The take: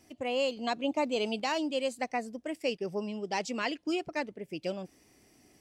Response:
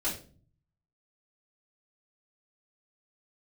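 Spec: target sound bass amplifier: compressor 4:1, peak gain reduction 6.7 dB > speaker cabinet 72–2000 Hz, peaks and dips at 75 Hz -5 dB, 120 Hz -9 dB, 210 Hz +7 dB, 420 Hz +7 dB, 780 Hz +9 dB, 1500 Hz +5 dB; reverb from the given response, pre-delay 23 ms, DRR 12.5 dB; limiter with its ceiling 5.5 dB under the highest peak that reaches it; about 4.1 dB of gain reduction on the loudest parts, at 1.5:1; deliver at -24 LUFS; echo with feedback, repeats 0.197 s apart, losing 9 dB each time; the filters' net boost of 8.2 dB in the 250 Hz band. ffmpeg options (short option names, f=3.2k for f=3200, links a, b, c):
-filter_complex "[0:a]equalizer=f=250:t=o:g=6,acompressor=threshold=-35dB:ratio=1.5,alimiter=level_in=2dB:limit=-24dB:level=0:latency=1,volume=-2dB,aecho=1:1:197|394|591|788:0.355|0.124|0.0435|0.0152,asplit=2[a][b];[1:a]atrim=start_sample=2205,adelay=23[c];[b][c]afir=irnorm=-1:irlink=0,volume=-18dB[d];[a][d]amix=inputs=2:normalize=0,acompressor=threshold=-34dB:ratio=4,highpass=f=72:w=0.5412,highpass=f=72:w=1.3066,equalizer=f=75:t=q:w=4:g=-5,equalizer=f=120:t=q:w=4:g=-9,equalizer=f=210:t=q:w=4:g=7,equalizer=f=420:t=q:w=4:g=7,equalizer=f=780:t=q:w=4:g=9,equalizer=f=1.5k:t=q:w=4:g=5,lowpass=f=2k:w=0.5412,lowpass=f=2k:w=1.3066,volume=10.5dB"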